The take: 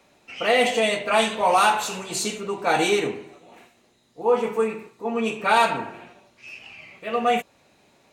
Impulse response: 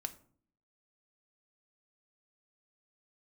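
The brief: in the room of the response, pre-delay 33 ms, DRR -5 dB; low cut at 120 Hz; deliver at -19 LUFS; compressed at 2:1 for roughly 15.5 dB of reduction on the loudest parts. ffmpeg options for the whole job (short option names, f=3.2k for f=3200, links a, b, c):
-filter_complex "[0:a]highpass=120,acompressor=threshold=-44dB:ratio=2,asplit=2[a][b];[1:a]atrim=start_sample=2205,adelay=33[c];[b][c]afir=irnorm=-1:irlink=0,volume=6.5dB[d];[a][d]amix=inputs=2:normalize=0,volume=11.5dB"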